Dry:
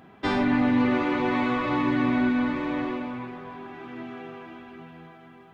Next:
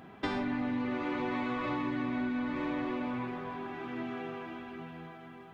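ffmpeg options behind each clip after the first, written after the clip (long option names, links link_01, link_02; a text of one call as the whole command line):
ffmpeg -i in.wav -af "acompressor=threshold=-30dB:ratio=12" out.wav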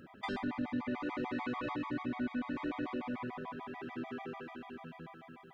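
ffmpeg -i in.wav -af "afftfilt=real='re*gt(sin(2*PI*6.8*pts/sr)*(1-2*mod(floor(b*sr/1024/630),2)),0)':imag='im*gt(sin(2*PI*6.8*pts/sr)*(1-2*mod(floor(b*sr/1024/630),2)),0)':win_size=1024:overlap=0.75,volume=-1dB" out.wav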